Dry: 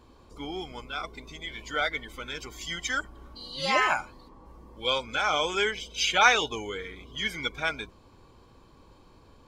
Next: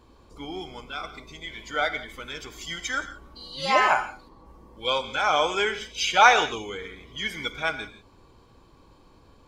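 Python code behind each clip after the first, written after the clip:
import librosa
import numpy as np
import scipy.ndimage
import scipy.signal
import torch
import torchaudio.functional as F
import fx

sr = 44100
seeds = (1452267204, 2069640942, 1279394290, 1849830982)

y = fx.rev_gated(x, sr, seeds[0], gate_ms=200, shape='flat', drr_db=10.5)
y = fx.dynamic_eq(y, sr, hz=800.0, q=0.93, threshold_db=-32.0, ratio=4.0, max_db=7)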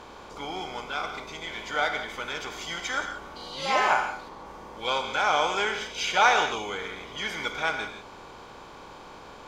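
y = fx.bin_compress(x, sr, power=0.6)
y = y * 10.0 ** (-6.0 / 20.0)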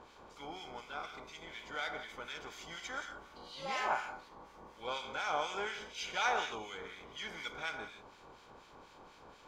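y = fx.harmonic_tremolo(x, sr, hz=4.1, depth_pct=70, crossover_hz=1500.0)
y = y * 10.0 ** (-8.5 / 20.0)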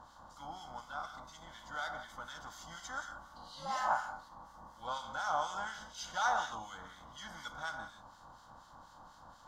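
y = fx.fixed_phaser(x, sr, hz=1000.0, stages=4)
y = y * 10.0 ** (3.0 / 20.0)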